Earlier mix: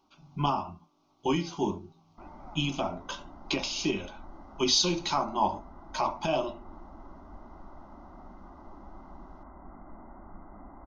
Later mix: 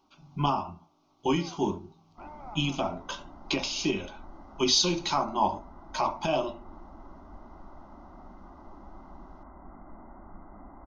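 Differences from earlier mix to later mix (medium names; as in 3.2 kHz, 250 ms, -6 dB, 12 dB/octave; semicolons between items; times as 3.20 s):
first sound +5.5 dB; reverb: on, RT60 0.80 s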